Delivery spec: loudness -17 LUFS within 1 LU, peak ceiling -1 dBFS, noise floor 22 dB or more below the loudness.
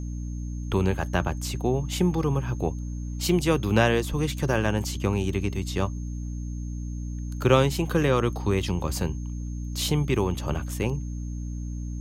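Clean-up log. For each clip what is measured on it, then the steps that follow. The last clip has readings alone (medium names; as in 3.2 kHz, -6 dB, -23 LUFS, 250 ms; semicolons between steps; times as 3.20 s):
hum 60 Hz; highest harmonic 300 Hz; hum level -30 dBFS; steady tone 6.4 kHz; tone level -52 dBFS; loudness -27.0 LUFS; peak level -6.0 dBFS; loudness target -17.0 LUFS
-> de-hum 60 Hz, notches 5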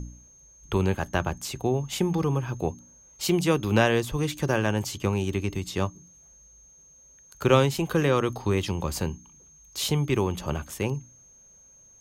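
hum not found; steady tone 6.4 kHz; tone level -52 dBFS
-> band-stop 6.4 kHz, Q 30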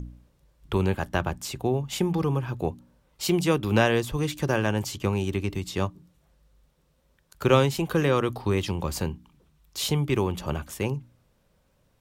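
steady tone not found; loudness -26.5 LUFS; peak level -5.5 dBFS; loudness target -17.0 LUFS
-> trim +9.5 dB; peak limiter -1 dBFS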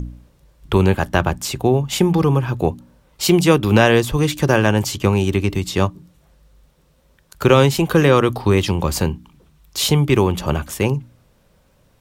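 loudness -17.5 LUFS; peak level -1.0 dBFS; noise floor -58 dBFS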